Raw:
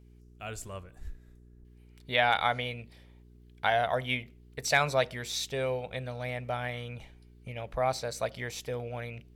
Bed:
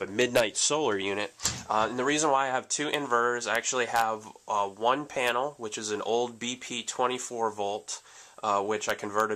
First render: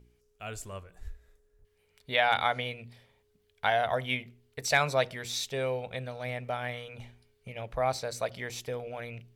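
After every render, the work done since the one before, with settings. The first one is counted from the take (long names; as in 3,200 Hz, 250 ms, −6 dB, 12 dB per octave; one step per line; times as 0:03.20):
hum removal 60 Hz, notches 6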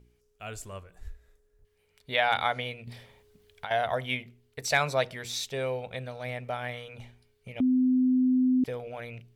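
0:02.87–0:03.71: compressor whose output falls as the input rises −36 dBFS
0:07.60–0:08.64: beep over 255 Hz −20 dBFS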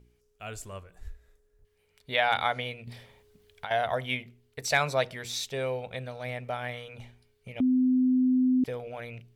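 no processing that can be heard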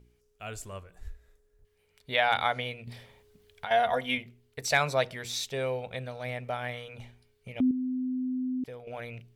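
0:03.66–0:04.18: comb filter 4.2 ms
0:07.71–0:08.87: clip gain −8 dB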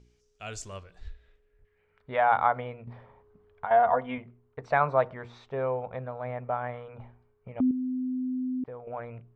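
low-pass filter sweep 6,100 Hz → 1,100 Hz, 0:00.66–0:02.21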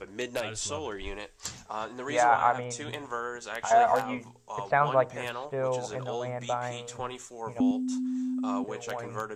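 mix in bed −9 dB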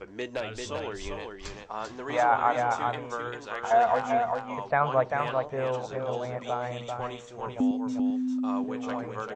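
high-frequency loss of the air 130 metres
single-tap delay 393 ms −4.5 dB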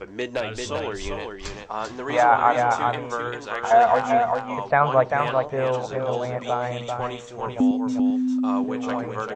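level +6 dB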